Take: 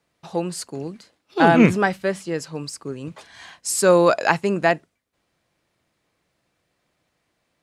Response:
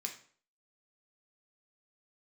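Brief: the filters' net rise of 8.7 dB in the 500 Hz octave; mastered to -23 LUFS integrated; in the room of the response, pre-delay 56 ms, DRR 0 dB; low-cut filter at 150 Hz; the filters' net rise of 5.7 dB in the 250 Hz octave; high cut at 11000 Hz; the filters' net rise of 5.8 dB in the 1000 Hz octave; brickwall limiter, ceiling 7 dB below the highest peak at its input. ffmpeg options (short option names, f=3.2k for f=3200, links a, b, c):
-filter_complex "[0:a]highpass=150,lowpass=11k,equalizer=f=250:t=o:g=5.5,equalizer=f=500:t=o:g=8,equalizer=f=1k:t=o:g=4,alimiter=limit=-2.5dB:level=0:latency=1,asplit=2[a][b];[1:a]atrim=start_sample=2205,adelay=56[c];[b][c]afir=irnorm=-1:irlink=0,volume=1dB[d];[a][d]amix=inputs=2:normalize=0,volume=-8.5dB"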